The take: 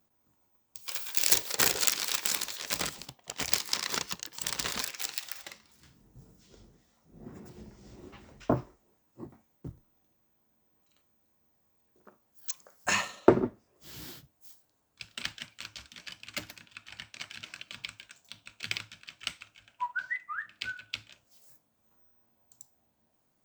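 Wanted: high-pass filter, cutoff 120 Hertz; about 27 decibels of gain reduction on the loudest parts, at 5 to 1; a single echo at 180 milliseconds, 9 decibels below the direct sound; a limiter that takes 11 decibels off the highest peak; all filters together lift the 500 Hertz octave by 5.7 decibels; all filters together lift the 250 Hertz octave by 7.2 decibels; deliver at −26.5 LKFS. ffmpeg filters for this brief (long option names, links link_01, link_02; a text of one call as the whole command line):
ffmpeg -i in.wav -af "highpass=120,equalizer=frequency=250:width_type=o:gain=8,equalizer=frequency=500:width_type=o:gain=4.5,acompressor=threshold=-40dB:ratio=5,alimiter=level_in=5.5dB:limit=-24dB:level=0:latency=1,volume=-5.5dB,aecho=1:1:180:0.355,volume=20dB" out.wav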